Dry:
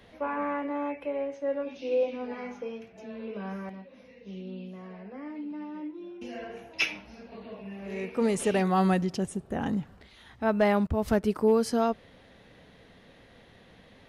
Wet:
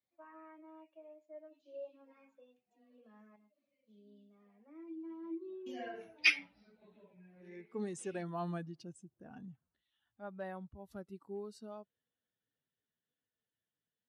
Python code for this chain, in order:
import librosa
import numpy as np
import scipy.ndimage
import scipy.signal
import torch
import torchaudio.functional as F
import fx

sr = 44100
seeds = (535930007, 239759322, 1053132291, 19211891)

y = fx.bin_expand(x, sr, power=1.5)
y = fx.doppler_pass(y, sr, speed_mps=31, closest_m=8.6, pass_at_s=5.91)
y = scipy.signal.sosfilt(scipy.signal.butter(2, 54.0, 'highpass', fs=sr, output='sos'), y)
y = fx.low_shelf(y, sr, hz=74.0, db=-11.0)
y = y * librosa.db_to_amplitude(5.5)